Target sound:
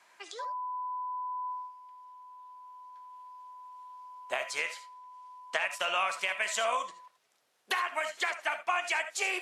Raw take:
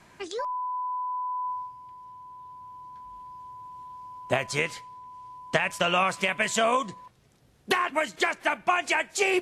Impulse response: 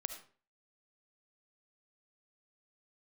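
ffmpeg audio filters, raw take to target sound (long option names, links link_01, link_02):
-filter_complex "[0:a]highpass=730[link_01];[1:a]atrim=start_sample=2205,atrim=end_sample=3969[link_02];[link_01][link_02]afir=irnorm=-1:irlink=0,volume=-3dB"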